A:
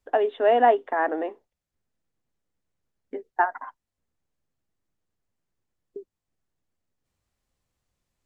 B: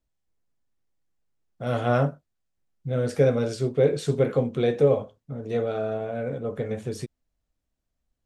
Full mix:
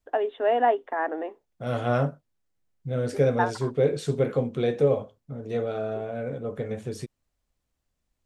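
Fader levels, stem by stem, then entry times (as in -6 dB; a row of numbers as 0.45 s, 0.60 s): -3.5 dB, -2.0 dB; 0.00 s, 0.00 s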